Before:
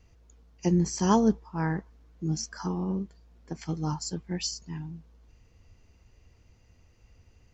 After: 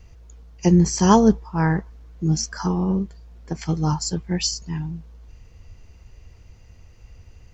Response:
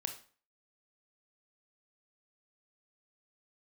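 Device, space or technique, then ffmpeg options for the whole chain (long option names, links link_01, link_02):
low shelf boost with a cut just above: -af "lowshelf=frequency=80:gain=6.5,equalizer=frequency=270:width_type=o:width=0.55:gain=-4,volume=8.5dB"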